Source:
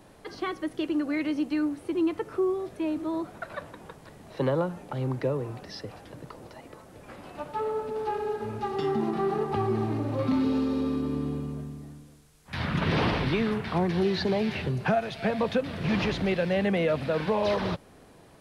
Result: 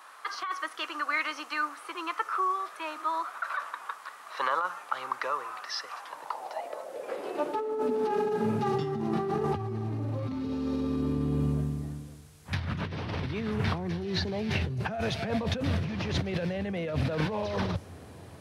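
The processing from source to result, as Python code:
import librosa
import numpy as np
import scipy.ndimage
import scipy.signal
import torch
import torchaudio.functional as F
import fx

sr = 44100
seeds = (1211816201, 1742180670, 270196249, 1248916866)

y = fx.dynamic_eq(x, sr, hz=5900.0, q=2.7, threshold_db=-60.0, ratio=4.0, max_db=5)
y = fx.filter_sweep_highpass(y, sr, from_hz=1200.0, to_hz=87.0, start_s=5.89, end_s=9.32, q=4.5)
y = fx.over_compress(y, sr, threshold_db=-30.0, ratio=-1.0)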